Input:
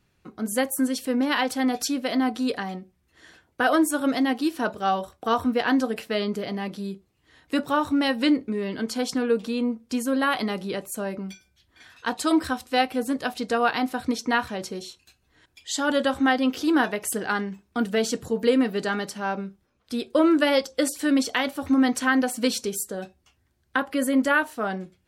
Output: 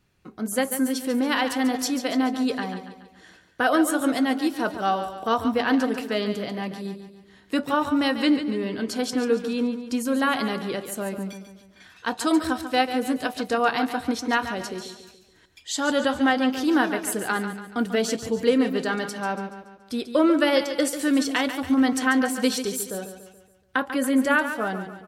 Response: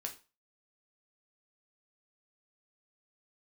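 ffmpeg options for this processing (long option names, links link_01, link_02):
-af "aecho=1:1:142|284|426|568|710:0.316|0.149|0.0699|0.0328|0.0154"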